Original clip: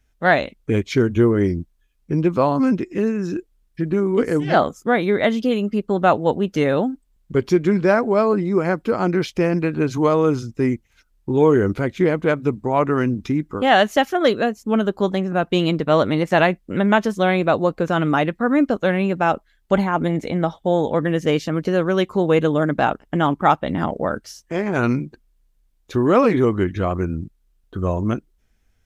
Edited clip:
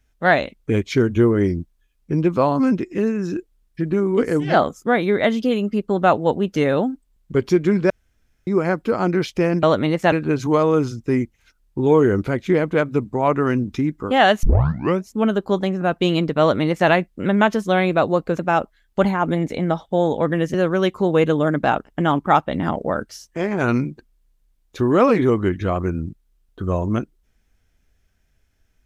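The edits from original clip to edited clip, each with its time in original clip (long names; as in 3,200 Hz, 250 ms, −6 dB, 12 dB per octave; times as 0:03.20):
0:07.90–0:08.47: fill with room tone
0:13.94: tape start 0.66 s
0:15.91–0:16.40: duplicate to 0:09.63
0:17.90–0:19.12: remove
0:21.27–0:21.69: remove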